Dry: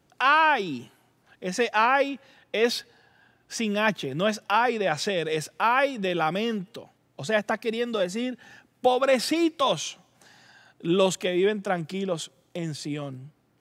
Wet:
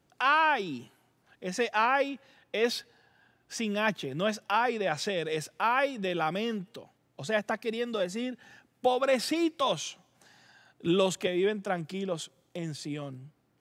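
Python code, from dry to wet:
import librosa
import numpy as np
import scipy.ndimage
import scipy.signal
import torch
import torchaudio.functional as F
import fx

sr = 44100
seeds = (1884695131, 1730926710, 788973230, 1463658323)

y = fx.band_squash(x, sr, depth_pct=70, at=(10.86, 11.27))
y = F.gain(torch.from_numpy(y), -4.5).numpy()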